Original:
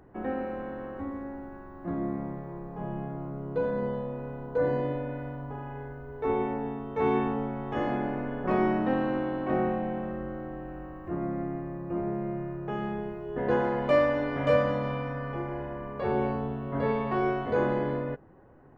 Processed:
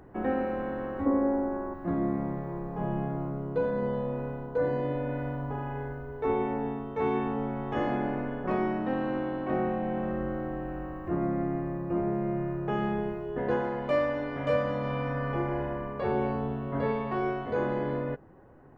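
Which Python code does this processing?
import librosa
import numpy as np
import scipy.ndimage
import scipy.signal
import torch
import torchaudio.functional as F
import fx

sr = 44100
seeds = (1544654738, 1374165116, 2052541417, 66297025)

y = fx.rider(x, sr, range_db=4, speed_s=0.5)
y = fx.graphic_eq(y, sr, hz=(125, 250, 500, 1000, 4000), db=(-6, 6, 10, 5, -12), at=(1.06, 1.74))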